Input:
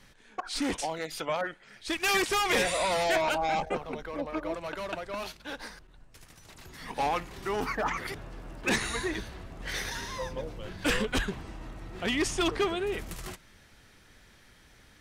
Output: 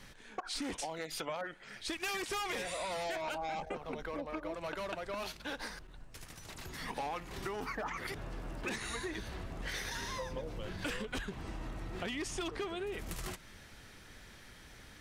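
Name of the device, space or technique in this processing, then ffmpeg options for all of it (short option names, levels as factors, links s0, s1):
serial compression, peaks first: -af "acompressor=threshold=0.0158:ratio=5,acompressor=threshold=0.00562:ratio=1.5,volume=1.41"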